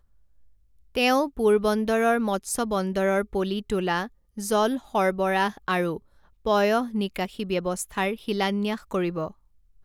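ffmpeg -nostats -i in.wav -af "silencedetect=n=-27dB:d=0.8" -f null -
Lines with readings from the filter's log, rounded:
silence_start: 0.00
silence_end: 0.96 | silence_duration: 0.96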